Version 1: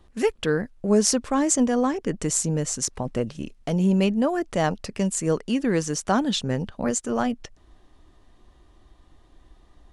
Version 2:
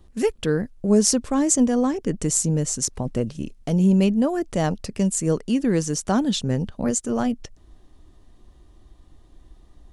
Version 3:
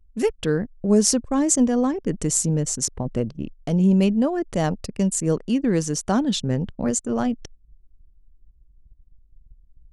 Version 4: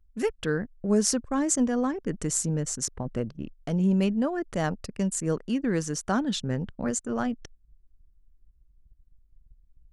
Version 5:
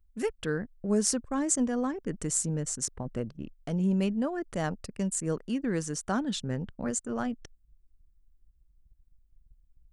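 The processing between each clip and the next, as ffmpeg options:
-af "equalizer=f=1.5k:w=0.33:g=-8,volume=4.5dB"
-af "anlmdn=3.98"
-af "equalizer=f=1.5k:w=1.5:g=7,volume=-6dB"
-af "aexciter=amount=1.5:drive=2.9:freq=7.9k,volume=-3.5dB"

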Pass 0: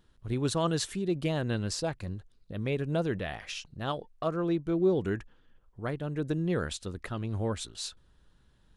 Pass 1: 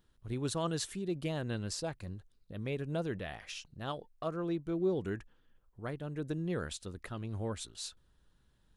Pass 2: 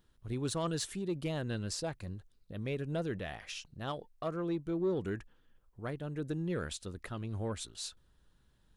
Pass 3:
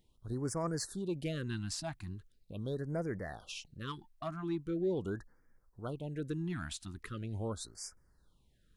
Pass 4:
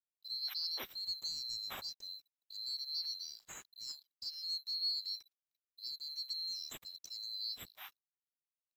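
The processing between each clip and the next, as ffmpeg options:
-af "highshelf=f=9.9k:g=7,volume=-6dB"
-af "asoftclip=type=tanh:threshold=-25.5dB,volume=1dB"
-af "afftfilt=real='re*(1-between(b*sr/1024,440*pow(3400/440,0.5+0.5*sin(2*PI*0.41*pts/sr))/1.41,440*pow(3400/440,0.5+0.5*sin(2*PI*0.41*pts/sr))*1.41))':imag='im*(1-between(b*sr/1024,440*pow(3400/440,0.5+0.5*sin(2*PI*0.41*pts/sr))/1.41,440*pow(3400/440,0.5+0.5*sin(2*PI*0.41*pts/sr))*1.41))':win_size=1024:overlap=0.75,volume=-1dB"
-af "afftfilt=real='real(if(lt(b,736),b+184*(1-2*mod(floor(b/184),2)),b),0)':imag='imag(if(lt(b,736),b+184*(1-2*mod(floor(b/184),2)),b),0)':win_size=2048:overlap=0.75,aeval=exprs='sgn(val(0))*max(abs(val(0))-0.0015,0)':c=same,volume=-3.5dB"

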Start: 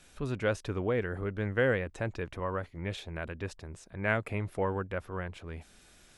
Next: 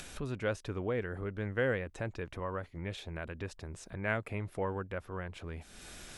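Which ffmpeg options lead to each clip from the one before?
-af "acompressor=mode=upward:threshold=-31dB:ratio=2.5,volume=-4dB"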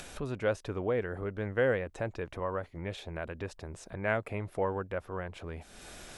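-af "equalizer=f=650:t=o:w=1.6:g=5.5"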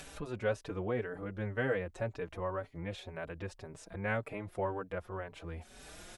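-filter_complex "[0:a]asplit=2[a][b];[b]adelay=4.8,afreqshift=1.9[c];[a][c]amix=inputs=2:normalize=1"

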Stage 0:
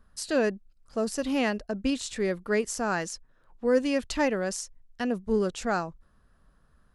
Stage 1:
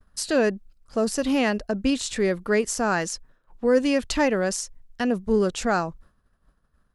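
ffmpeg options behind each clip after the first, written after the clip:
-filter_complex "[0:a]agate=range=-33dB:threshold=-52dB:ratio=3:detection=peak,asplit=2[a][b];[b]alimiter=limit=-23dB:level=0:latency=1:release=110,volume=-2dB[c];[a][c]amix=inputs=2:normalize=0,volume=1.5dB"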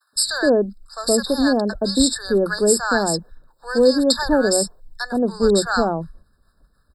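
-filter_complex "[0:a]acrossover=split=690|2800[a][b][c];[c]acontrast=84[d];[a][b][d]amix=inputs=3:normalize=0,acrossover=split=170|920[e][f][g];[f]adelay=120[h];[e]adelay=150[i];[i][h][g]amix=inputs=3:normalize=0,afftfilt=real='re*eq(mod(floor(b*sr/1024/1800),2),0)':imag='im*eq(mod(floor(b*sr/1024/1800),2),0)':win_size=1024:overlap=0.75,volume=6dB"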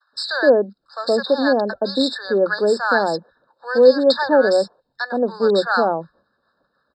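-af "crystalizer=i=6.5:c=0,highpass=220,equalizer=f=540:t=q:w=4:g=7,equalizer=f=850:t=q:w=4:g=4,equalizer=f=2.3k:t=q:w=4:g=-7,lowpass=f=3.1k:w=0.5412,lowpass=f=3.1k:w=1.3066,volume=-2dB"

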